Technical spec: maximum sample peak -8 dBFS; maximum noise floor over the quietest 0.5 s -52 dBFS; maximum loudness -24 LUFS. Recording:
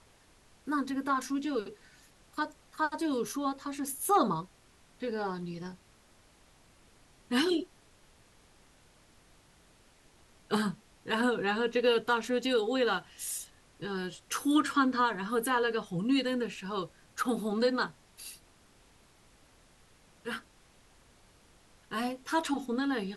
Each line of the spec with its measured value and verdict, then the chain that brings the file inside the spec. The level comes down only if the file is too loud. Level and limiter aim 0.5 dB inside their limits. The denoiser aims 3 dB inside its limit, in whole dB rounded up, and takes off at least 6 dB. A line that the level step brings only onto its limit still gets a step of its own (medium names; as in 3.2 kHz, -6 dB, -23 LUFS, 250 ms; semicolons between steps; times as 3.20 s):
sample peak -15.0 dBFS: pass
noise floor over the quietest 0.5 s -62 dBFS: pass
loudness -31.5 LUFS: pass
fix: none needed